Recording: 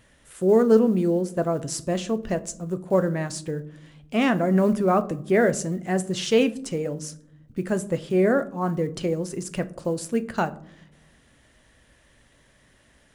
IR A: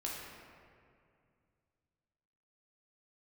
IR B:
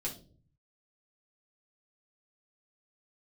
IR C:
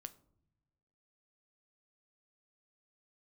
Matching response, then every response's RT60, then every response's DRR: C; 2.3 s, 0.45 s, not exponential; -4.5, -4.5, 10.5 dB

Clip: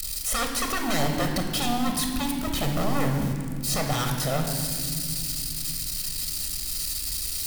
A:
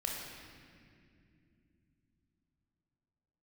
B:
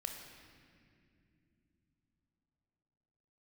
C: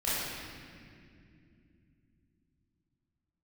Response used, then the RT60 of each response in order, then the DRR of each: B; not exponential, not exponential, not exponential; -1.5, 3.0, -11.0 dB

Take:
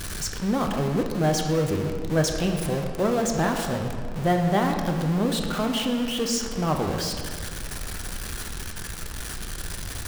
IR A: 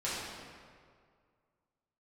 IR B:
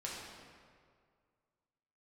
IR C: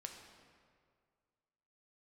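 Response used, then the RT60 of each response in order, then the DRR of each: C; 2.0, 2.0, 2.0 s; -10.0, -5.0, 2.5 dB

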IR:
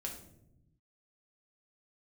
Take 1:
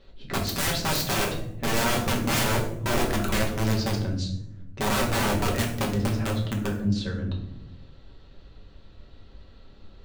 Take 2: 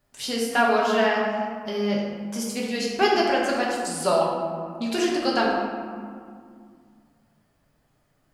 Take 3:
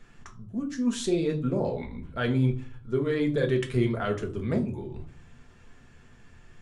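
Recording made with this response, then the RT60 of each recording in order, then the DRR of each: 1; 0.80, 2.2, 0.45 s; -1.0, -4.5, 2.0 dB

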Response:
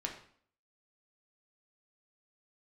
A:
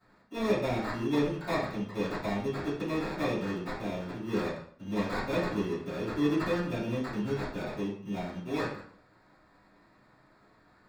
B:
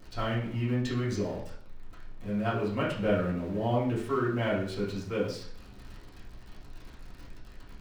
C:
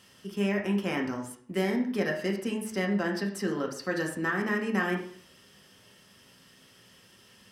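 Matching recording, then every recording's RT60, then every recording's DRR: C; 0.55, 0.55, 0.55 s; -17.0, -9.0, 0.5 dB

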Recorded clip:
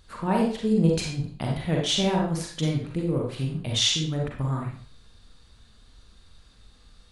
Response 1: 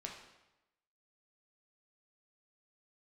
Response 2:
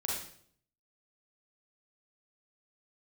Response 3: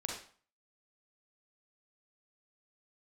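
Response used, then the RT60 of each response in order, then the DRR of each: 3; 0.95, 0.60, 0.45 s; -0.5, -4.0, -1.0 dB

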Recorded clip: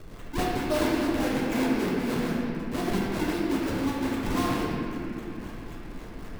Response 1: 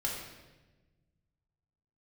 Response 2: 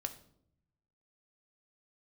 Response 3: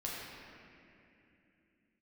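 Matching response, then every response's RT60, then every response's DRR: 3; 1.2, 0.70, 2.8 s; -3.0, 6.5, -6.0 dB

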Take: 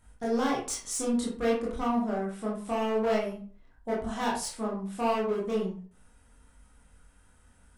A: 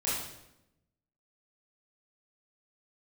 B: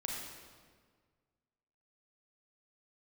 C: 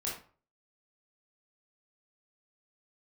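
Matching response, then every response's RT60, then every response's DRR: C; 0.85, 1.7, 0.40 s; -9.5, -2.0, -5.0 dB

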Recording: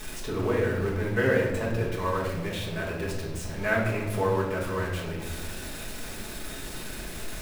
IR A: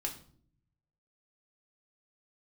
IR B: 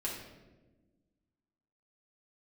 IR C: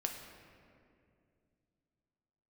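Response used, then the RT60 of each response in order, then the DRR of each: B; 0.55, 1.2, 2.4 s; 0.5, -5.5, 2.5 dB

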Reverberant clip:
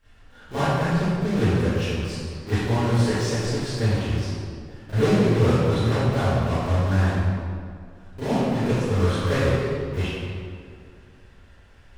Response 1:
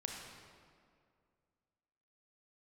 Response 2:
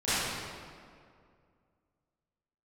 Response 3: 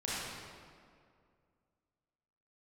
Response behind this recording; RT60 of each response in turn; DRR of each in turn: 2; 2.2, 2.2, 2.2 s; 0.5, -17.5, -9.0 dB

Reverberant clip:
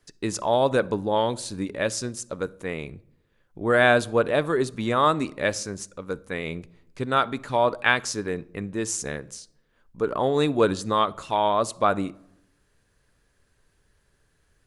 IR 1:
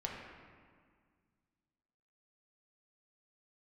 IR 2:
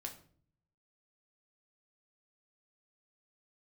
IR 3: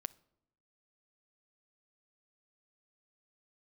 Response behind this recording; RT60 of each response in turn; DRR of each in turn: 3; 1.8, 0.50, 0.85 s; -2.5, 1.5, 18.5 dB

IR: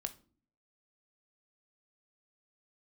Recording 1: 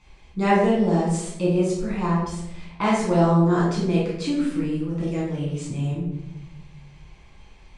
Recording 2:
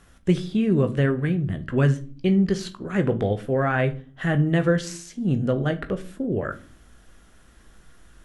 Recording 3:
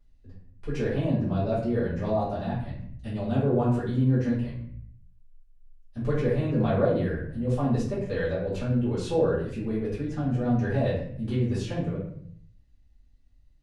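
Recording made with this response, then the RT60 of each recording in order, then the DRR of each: 2; 0.90, 0.45, 0.65 s; -7.5, 7.5, -12.0 dB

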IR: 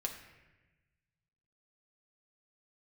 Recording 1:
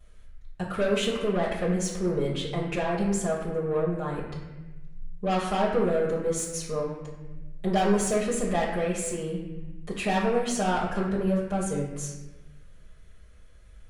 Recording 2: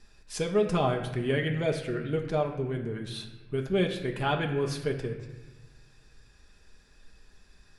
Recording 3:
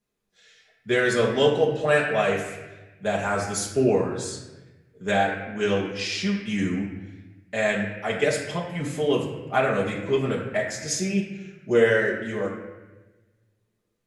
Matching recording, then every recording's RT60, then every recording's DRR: 2; 1.1, 1.1, 1.1 s; -10.5, 1.5, -5.0 dB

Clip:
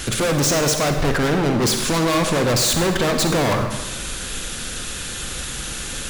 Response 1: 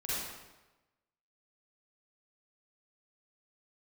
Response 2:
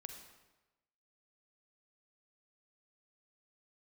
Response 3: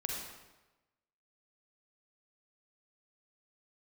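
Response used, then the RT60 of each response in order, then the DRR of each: 2; 1.1, 1.1, 1.1 s; -10.0, 5.0, -1.0 dB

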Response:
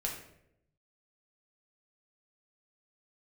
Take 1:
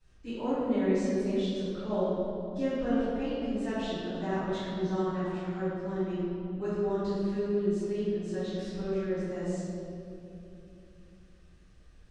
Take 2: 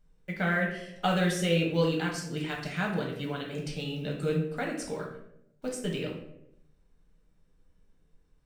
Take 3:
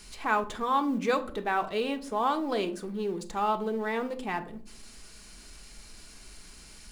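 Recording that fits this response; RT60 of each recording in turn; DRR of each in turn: 2; 2.8, 0.75, 0.55 s; -18.0, -1.5, 6.5 dB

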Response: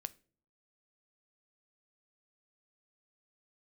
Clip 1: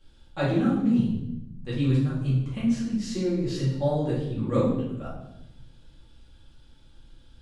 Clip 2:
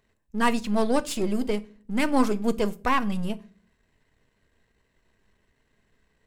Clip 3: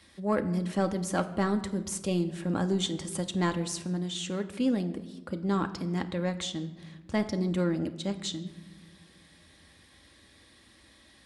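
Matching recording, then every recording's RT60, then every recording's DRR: 2; 0.85 s, not exponential, not exponential; -9.5, 14.0, 6.0 dB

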